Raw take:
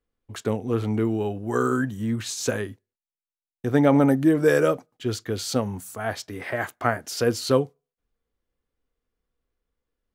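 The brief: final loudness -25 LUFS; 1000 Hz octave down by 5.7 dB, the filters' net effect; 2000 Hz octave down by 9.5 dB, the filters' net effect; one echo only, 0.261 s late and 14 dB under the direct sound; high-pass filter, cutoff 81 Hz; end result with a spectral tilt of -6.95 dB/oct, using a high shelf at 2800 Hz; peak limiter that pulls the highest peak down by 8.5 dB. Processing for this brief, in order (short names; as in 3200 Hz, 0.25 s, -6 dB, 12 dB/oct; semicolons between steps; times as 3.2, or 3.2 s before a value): HPF 81 Hz; bell 1000 Hz -4.5 dB; bell 2000 Hz -9 dB; high shelf 2800 Hz -6 dB; limiter -16.5 dBFS; echo 0.261 s -14 dB; gain +3.5 dB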